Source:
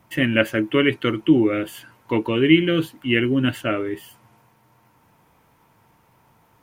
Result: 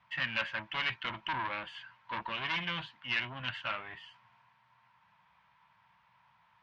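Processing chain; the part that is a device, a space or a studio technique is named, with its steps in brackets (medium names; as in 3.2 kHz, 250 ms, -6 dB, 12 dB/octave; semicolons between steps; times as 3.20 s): 1.04–2.32 s: dynamic bell 300 Hz, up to +6 dB, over -28 dBFS, Q 0.85; scooped metal amplifier (valve stage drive 19 dB, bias 0.45; cabinet simulation 82–3800 Hz, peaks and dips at 92 Hz -8 dB, 190 Hz +7 dB, 430 Hz -9 dB, 1 kHz +8 dB, 1.7 kHz +4 dB; amplifier tone stack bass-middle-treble 10-0-10)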